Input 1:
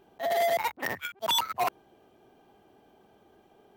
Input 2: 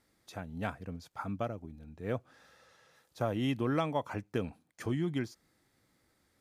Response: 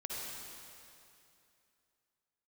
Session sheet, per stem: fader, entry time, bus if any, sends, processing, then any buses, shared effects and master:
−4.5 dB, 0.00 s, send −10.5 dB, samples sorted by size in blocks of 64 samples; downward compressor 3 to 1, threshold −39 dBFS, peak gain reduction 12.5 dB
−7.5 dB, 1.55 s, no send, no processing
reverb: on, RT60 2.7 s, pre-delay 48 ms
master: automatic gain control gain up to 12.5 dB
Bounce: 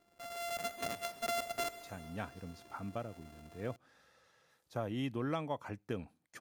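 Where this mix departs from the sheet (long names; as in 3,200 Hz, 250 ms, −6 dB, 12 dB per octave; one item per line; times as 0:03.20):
stem 1 −4.5 dB → −12.5 dB
stem 2 −7.5 dB → −18.0 dB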